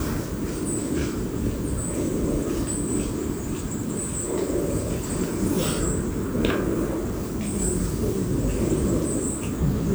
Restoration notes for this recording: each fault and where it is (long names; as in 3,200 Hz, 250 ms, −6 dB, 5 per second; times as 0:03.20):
0:06.89–0:07.54: clipping −23 dBFS